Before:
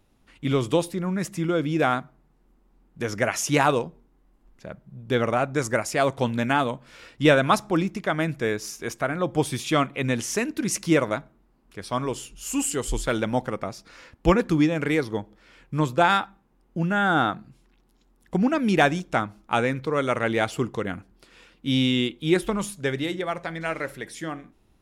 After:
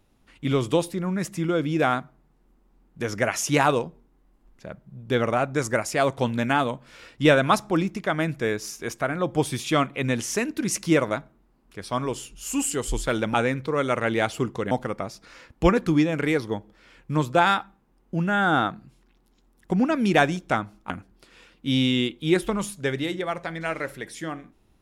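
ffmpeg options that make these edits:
ffmpeg -i in.wav -filter_complex "[0:a]asplit=4[link_01][link_02][link_03][link_04];[link_01]atrim=end=13.342[link_05];[link_02]atrim=start=19.528:end=20.902[link_06];[link_03]atrim=start=13.338:end=19.532[link_07];[link_04]atrim=start=20.898[link_08];[link_05][link_06]acrossfade=duration=0.004:curve1=hsin:curve2=hsin[link_09];[link_09][link_07]acrossfade=duration=0.004:curve1=hsin:curve2=hsin[link_10];[link_10][link_08]acrossfade=duration=0.004:curve1=hsin:curve2=hsin" out.wav

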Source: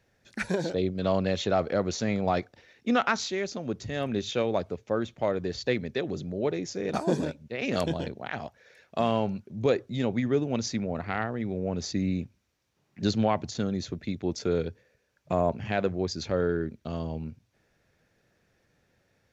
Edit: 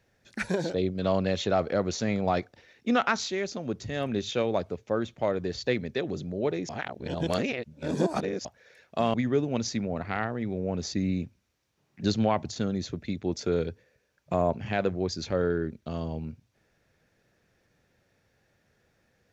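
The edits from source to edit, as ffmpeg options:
ffmpeg -i in.wav -filter_complex "[0:a]asplit=4[link_01][link_02][link_03][link_04];[link_01]atrim=end=6.692[link_05];[link_02]atrim=start=6.688:end=8.452,asetpts=PTS-STARTPTS,areverse[link_06];[link_03]atrim=start=8.448:end=9.142[link_07];[link_04]atrim=start=10.128[link_08];[link_05][link_06]acrossfade=duration=0.004:curve1=hsin:curve2=hsin[link_09];[link_09][link_07]acrossfade=duration=0.004:curve1=hsin:curve2=hsin[link_10];[link_10][link_08]acrossfade=duration=0.004:curve1=hsin:curve2=hsin" out.wav

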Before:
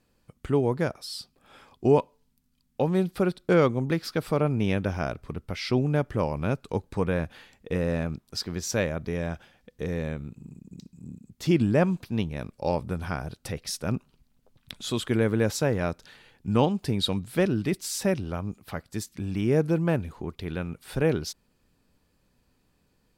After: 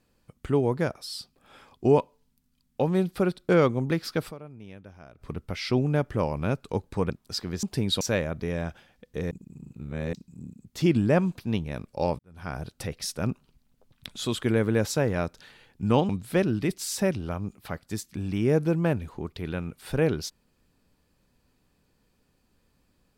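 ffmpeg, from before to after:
ffmpeg -i in.wav -filter_complex "[0:a]asplit=10[link_01][link_02][link_03][link_04][link_05][link_06][link_07][link_08][link_09][link_10];[link_01]atrim=end=4.52,asetpts=PTS-STARTPTS,afade=type=out:start_time=4.28:duration=0.24:curve=exp:silence=0.105925[link_11];[link_02]atrim=start=4.52:end=4.98,asetpts=PTS-STARTPTS,volume=-19.5dB[link_12];[link_03]atrim=start=4.98:end=7.102,asetpts=PTS-STARTPTS,afade=type=in:duration=0.24:curve=exp:silence=0.105925[link_13];[link_04]atrim=start=8.128:end=8.662[link_14];[link_05]atrim=start=16.738:end=17.122[link_15];[link_06]atrim=start=8.658:end=9.962[link_16];[link_07]atrim=start=9.958:end=10.782,asetpts=PTS-STARTPTS,areverse[link_17];[link_08]atrim=start=10.778:end=12.84,asetpts=PTS-STARTPTS,afade=type=out:start_time=2.058:duration=0.004:curve=hsin[link_18];[link_09]atrim=start=12.84:end=16.742,asetpts=PTS-STARTPTS,afade=type=in:duration=0.37:curve=qua[link_19];[link_10]atrim=start=17.118[link_20];[link_11][link_12][link_13]concat=n=3:v=0:a=1[link_21];[link_21][link_14]acrossfade=duration=0.004:curve1=hsin:curve2=hsin[link_22];[link_22][link_15]acrossfade=duration=0.004:curve1=hsin:curve2=hsin[link_23];[link_23][link_16]acrossfade=duration=0.004:curve1=hsin:curve2=hsin[link_24];[link_24][link_17]acrossfade=duration=0.004:curve1=hsin:curve2=hsin[link_25];[link_18][link_19]concat=n=2:v=0:a=1[link_26];[link_25][link_26]acrossfade=duration=0.004:curve1=hsin:curve2=hsin[link_27];[link_27][link_20]acrossfade=duration=0.004:curve1=hsin:curve2=hsin" out.wav

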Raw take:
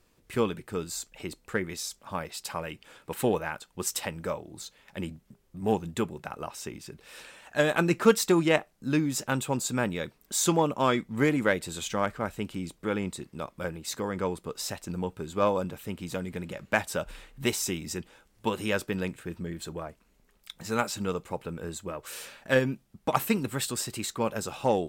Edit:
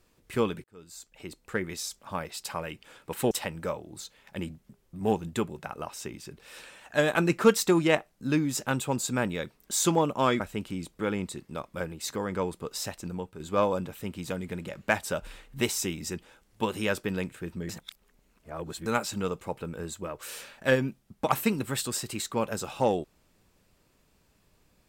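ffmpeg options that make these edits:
ffmpeg -i in.wav -filter_complex "[0:a]asplit=7[link_01][link_02][link_03][link_04][link_05][link_06][link_07];[link_01]atrim=end=0.64,asetpts=PTS-STARTPTS,afade=type=out:start_time=0.636:duration=0.004:curve=hsin[link_08];[link_02]atrim=start=0.64:end=3.312,asetpts=PTS-STARTPTS,afade=type=in:duration=1.04[link_09];[link_03]atrim=start=3.918:end=11.012[link_10];[link_04]atrim=start=12.238:end=15.24,asetpts=PTS-STARTPTS,afade=type=out:start_time=2.542:duration=0.46:silence=0.398107[link_11];[link_05]atrim=start=15.24:end=19.532,asetpts=PTS-STARTPTS,afade=type=in:duration=0.004:curve=hsin:silence=0.398107[link_12];[link_06]atrim=start=19.528:end=20.702,asetpts=PTS-STARTPTS,areverse[link_13];[link_07]atrim=start=20.698[link_14];[link_08][link_09]concat=n=2:v=0:a=1[link_15];[link_15][link_10]acrossfade=duration=0.004:curve1=hsin:curve2=hsin[link_16];[link_11][link_12]concat=n=2:v=0:a=1[link_17];[link_16][link_17]acrossfade=duration=0.004:curve1=hsin:curve2=hsin[link_18];[link_18][link_13]acrossfade=duration=0.004:curve1=hsin:curve2=hsin[link_19];[link_19][link_14]acrossfade=duration=0.004:curve1=hsin:curve2=hsin" out.wav

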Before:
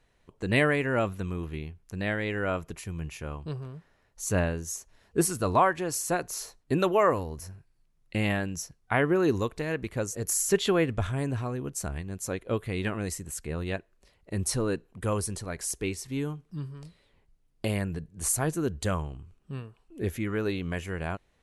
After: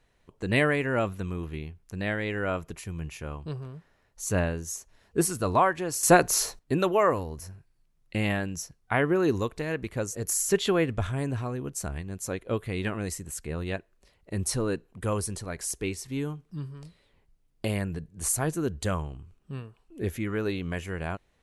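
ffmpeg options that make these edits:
ffmpeg -i in.wav -filter_complex "[0:a]asplit=3[link_01][link_02][link_03];[link_01]atrim=end=6.032[link_04];[link_02]atrim=start=6.028:end=6.592,asetpts=PTS-STARTPTS,volume=10.5dB[link_05];[link_03]atrim=start=6.588[link_06];[link_04][link_05]acrossfade=duration=0.004:curve1=hsin:curve2=hsin[link_07];[link_07][link_06]acrossfade=duration=0.004:curve1=hsin:curve2=hsin" out.wav

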